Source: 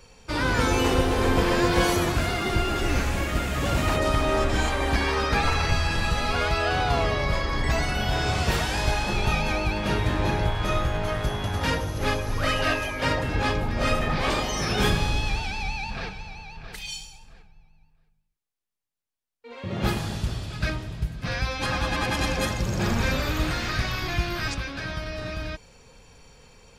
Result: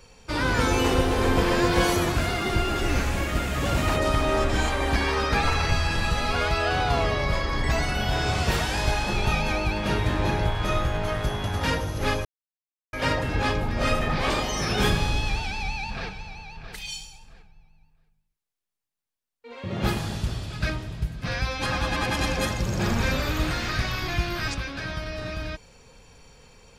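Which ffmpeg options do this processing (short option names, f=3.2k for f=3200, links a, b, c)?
-filter_complex "[0:a]asplit=3[a][b][c];[a]atrim=end=12.25,asetpts=PTS-STARTPTS,afade=t=out:st=12.246:d=0.004:c=hsin[d];[b]atrim=start=12.25:end=12.93,asetpts=PTS-STARTPTS,volume=0[e];[c]atrim=start=12.93,asetpts=PTS-STARTPTS,afade=t=in:d=0.004:c=hsin[f];[d][e][f]concat=n=3:v=0:a=1"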